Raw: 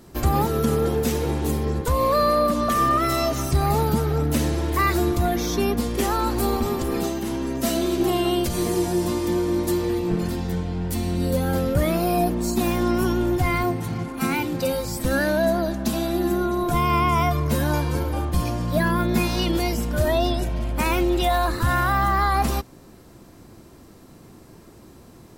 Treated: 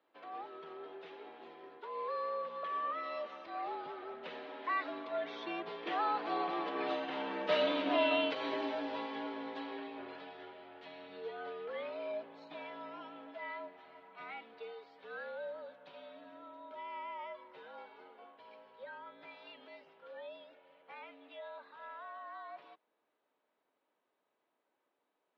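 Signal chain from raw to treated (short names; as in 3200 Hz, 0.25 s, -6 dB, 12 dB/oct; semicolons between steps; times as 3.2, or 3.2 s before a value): Doppler pass-by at 7.67, 7 m/s, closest 5.9 m; mistuned SSB -66 Hz 520–3600 Hz; gain -1 dB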